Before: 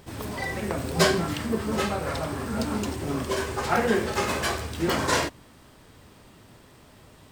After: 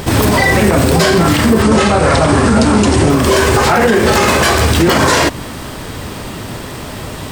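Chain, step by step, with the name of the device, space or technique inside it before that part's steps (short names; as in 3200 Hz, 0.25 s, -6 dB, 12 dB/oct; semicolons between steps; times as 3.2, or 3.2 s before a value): 1.62–3.1 Chebyshev low-pass 10000 Hz, order 5; loud club master (compressor 2:1, threshold -29 dBFS, peak gain reduction 8 dB; hard clip -16 dBFS, distortion -36 dB; maximiser +27.5 dB); gain -1 dB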